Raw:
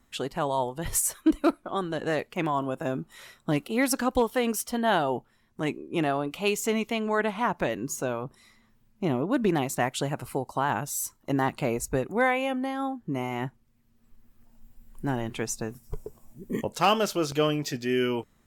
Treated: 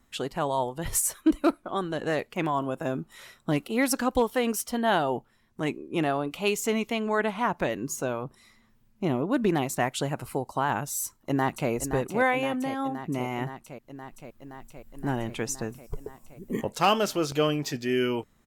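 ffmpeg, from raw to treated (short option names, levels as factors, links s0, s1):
-filter_complex "[0:a]asplit=2[s0][s1];[s1]afade=t=in:st=11.04:d=0.01,afade=t=out:st=11.7:d=0.01,aecho=0:1:520|1040|1560|2080|2600|3120|3640|4160|4680|5200|5720|6240:0.354813|0.283851|0.227081|0.181664|0.145332|0.116265|0.0930122|0.0744098|0.0595278|0.0476222|0.0380978|0.0304782[s2];[s0][s2]amix=inputs=2:normalize=0"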